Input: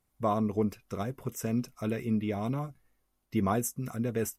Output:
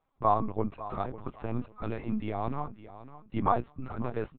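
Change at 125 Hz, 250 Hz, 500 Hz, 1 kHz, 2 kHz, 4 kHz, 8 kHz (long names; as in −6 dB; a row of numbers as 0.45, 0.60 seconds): −2.5 dB, −4.5 dB, −1.0 dB, +6.0 dB, −2.5 dB, −5.5 dB, below −40 dB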